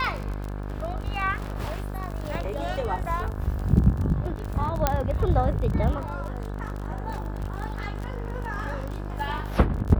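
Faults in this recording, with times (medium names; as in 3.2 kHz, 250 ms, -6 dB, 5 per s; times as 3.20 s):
buzz 50 Hz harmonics 35 -32 dBFS
crackle 31 per s -30 dBFS
4.87 s: pop -6 dBFS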